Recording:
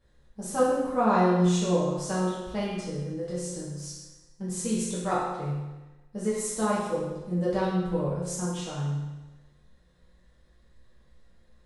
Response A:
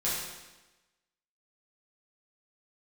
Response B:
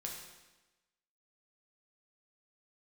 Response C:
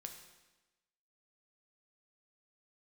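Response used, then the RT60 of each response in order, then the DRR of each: A; 1.1, 1.1, 1.1 s; -9.0, -1.0, 4.0 dB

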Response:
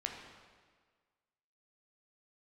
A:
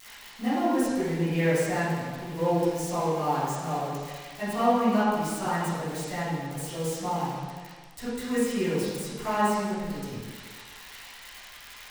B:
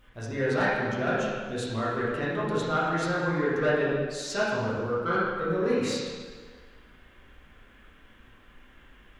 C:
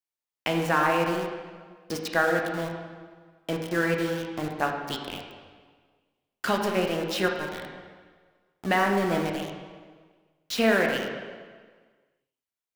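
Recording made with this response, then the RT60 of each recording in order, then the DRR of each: C; 1.6, 1.6, 1.6 s; -15.0, -8.5, 1.0 dB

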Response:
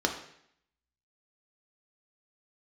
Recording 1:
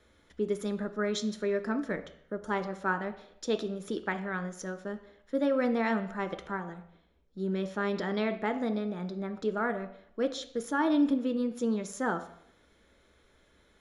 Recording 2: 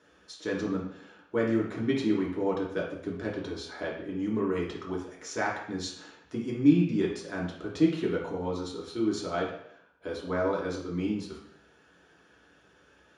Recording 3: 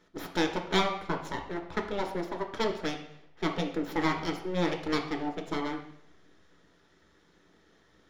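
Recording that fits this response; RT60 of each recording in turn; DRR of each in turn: 3; 0.70, 0.70, 0.70 s; 8.0, -4.0, 2.5 dB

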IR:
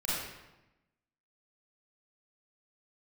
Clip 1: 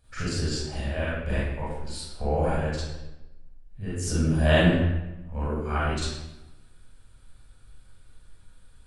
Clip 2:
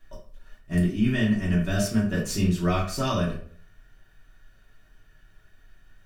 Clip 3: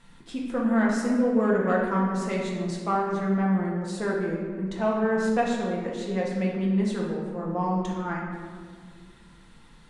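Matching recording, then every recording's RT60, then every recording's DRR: 1; 1.0, 0.50, 1.8 s; -9.0, -7.0, -3.5 dB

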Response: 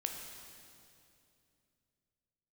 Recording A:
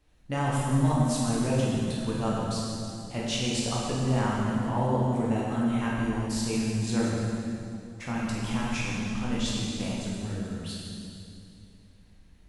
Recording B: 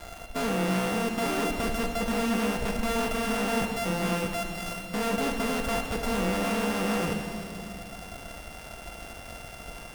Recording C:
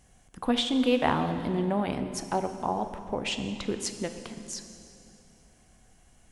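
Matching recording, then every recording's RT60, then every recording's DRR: B; 2.6, 2.6, 2.6 s; -5.5, 2.5, 7.5 dB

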